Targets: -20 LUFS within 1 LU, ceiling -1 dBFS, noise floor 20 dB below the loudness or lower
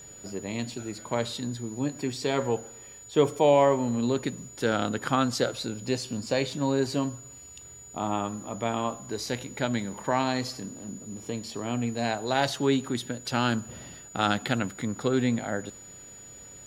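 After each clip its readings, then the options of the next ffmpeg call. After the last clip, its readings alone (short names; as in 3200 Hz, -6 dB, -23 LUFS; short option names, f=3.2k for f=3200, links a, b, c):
steady tone 6900 Hz; tone level -45 dBFS; loudness -28.5 LUFS; peak -8.0 dBFS; loudness target -20.0 LUFS
-> -af "bandreject=f=6.9k:w=30"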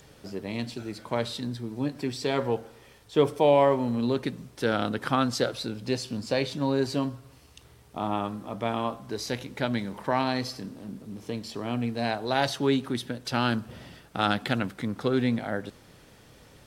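steady tone none; loudness -28.5 LUFS; peak -8.0 dBFS; loudness target -20.0 LUFS
-> -af "volume=8.5dB,alimiter=limit=-1dB:level=0:latency=1"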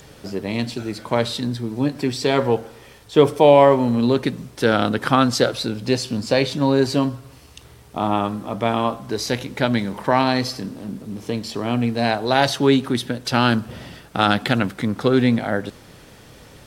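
loudness -20.0 LUFS; peak -1.0 dBFS; noise floor -46 dBFS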